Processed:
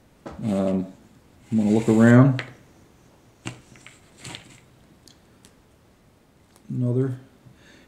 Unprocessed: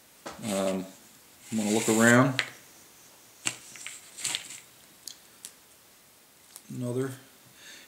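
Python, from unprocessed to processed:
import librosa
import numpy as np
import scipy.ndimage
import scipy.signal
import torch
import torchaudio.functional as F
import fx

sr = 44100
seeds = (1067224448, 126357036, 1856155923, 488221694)

y = fx.tilt_eq(x, sr, slope=-4.0)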